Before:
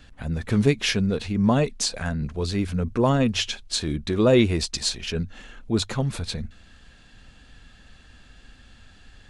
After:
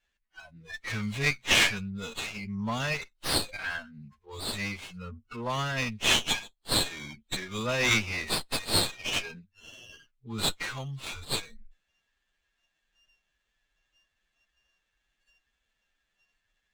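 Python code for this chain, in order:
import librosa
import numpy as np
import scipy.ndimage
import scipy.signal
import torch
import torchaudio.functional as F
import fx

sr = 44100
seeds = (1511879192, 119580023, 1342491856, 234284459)

y = fx.tone_stack(x, sr, knobs='10-0-10')
y = fx.noise_reduce_blind(y, sr, reduce_db=25)
y = fx.graphic_eq(y, sr, hz=(250, 2000, 4000, 8000), db=(10, 10, 7, -10))
y = fx.stretch_vocoder(y, sr, factor=1.8)
y = fx.running_max(y, sr, window=5)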